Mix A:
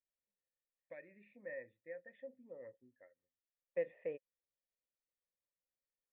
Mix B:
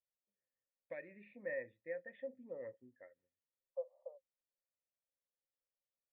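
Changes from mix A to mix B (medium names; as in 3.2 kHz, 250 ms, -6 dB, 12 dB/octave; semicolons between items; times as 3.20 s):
first voice +5.0 dB; second voice: add Chebyshev band-pass 530–1200 Hz, order 5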